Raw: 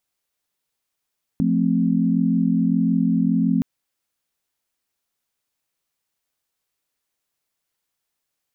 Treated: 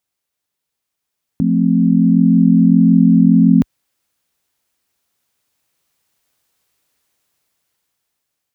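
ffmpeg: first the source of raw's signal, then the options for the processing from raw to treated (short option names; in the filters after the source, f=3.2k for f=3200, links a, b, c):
-f lavfi -i "aevalsrc='0.0944*(sin(2*PI*174.61*t)+sin(2*PI*220*t)+sin(2*PI*261.63*t))':d=2.22:s=44100"
-af "lowshelf=f=180:g=3.5,dynaudnorm=f=500:g=7:m=12dB,highpass=44"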